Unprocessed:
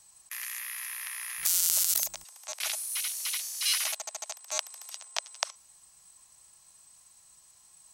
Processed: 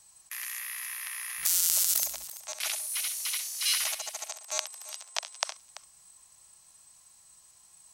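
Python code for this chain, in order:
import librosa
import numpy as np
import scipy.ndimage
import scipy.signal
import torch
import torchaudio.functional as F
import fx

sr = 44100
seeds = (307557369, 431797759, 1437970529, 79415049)

p1 = fx.low_shelf(x, sr, hz=130.0, db=8.5, at=(3.57, 4.17))
y = p1 + fx.echo_multitap(p1, sr, ms=(64, 337), db=(-11.5, -16.0), dry=0)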